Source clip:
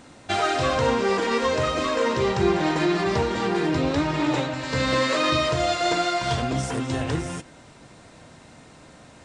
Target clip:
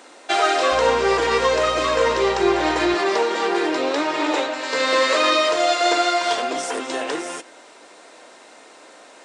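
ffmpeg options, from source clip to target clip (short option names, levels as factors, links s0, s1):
-filter_complex "[0:a]highpass=f=350:w=0.5412,highpass=f=350:w=1.3066,asettb=1/sr,asplit=3[s0][s1][s2];[s0]atrim=end=0.724[s3];[s1]atrim=start=0.72:end=2.95,asetpts=PTS-STARTPTS,afade=t=in:d=0.004:c=qsin,afade=t=out:st=2.226:d=0.004:c=qsin,aeval=exprs='val(0)+0.00794*(sin(2*PI*60*n/s)+sin(2*PI*2*60*n/s)/2+sin(2*PI*3*60*n/s)/3+sin(2*PI*4*60*n/s)/4+sin(2*PI*5*60*n/s)/5)':c=same[s4];[s2]atrim=start=2.946[s5];[s3][s4]acrossfade=d=0.004:c1=hsin:c2=qsin[s6];[s6][s5]acrossfade=d=0.004:c1=qsin:c2=hsin,volume=1.78"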